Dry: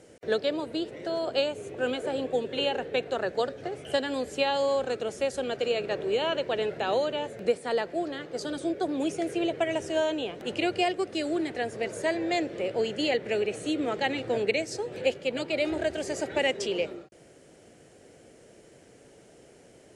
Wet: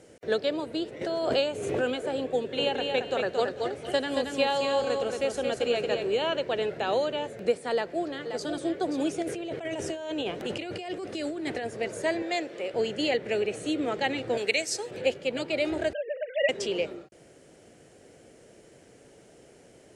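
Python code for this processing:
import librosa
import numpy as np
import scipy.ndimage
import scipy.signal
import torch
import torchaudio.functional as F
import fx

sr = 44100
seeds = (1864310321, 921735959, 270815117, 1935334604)

y = fx.pre_swell(x, sr, db_per_s=40.0, at=(1.01, 2.03))
y = fx.echo_feedback(y, sr, ms=226, feedback_pct=26, wet_db=-4.5, at=(2.58, 6.06), fade=0.02)
y = fx.echo_throw(y, sr, start_s=7.72, length_s=0.99, ms=530, feedback_pct=15, wet_db=-8.5)
y = fx.over_compress(y, sr, threshold_db=-33.0, ratio=-1.0, at=(9.22, 11.67))
y = fx.highpass(y, sr, hz=490.0, slope=6, at=(12.22, 12.74))
y = fx.tilt_eq(y, sr, slope=3.0, at=(14.37, 14.91))
y = fx.sine_speech(y, sr, at=(15.93, 16.49))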